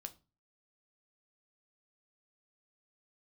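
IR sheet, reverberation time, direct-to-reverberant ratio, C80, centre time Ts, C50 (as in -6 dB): 0.30 s, 8.0 dB, 25.0 dB, 5 ms, 19.0 dB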